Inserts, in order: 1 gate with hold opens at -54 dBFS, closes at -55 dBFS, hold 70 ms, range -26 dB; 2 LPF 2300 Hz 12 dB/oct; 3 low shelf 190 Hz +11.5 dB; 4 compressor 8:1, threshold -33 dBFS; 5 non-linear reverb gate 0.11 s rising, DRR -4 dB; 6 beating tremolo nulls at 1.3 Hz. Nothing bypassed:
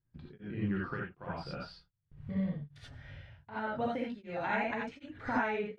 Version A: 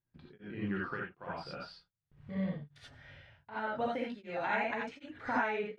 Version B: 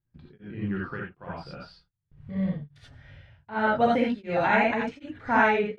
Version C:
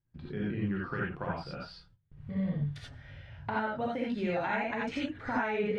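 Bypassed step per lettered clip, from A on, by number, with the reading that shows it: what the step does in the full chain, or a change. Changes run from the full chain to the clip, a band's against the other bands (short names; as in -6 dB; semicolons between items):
3, 125 Hz band -4.5 dB; 4, mean gain reduction 5.0 dB; 6, crest factor change -3.0 dB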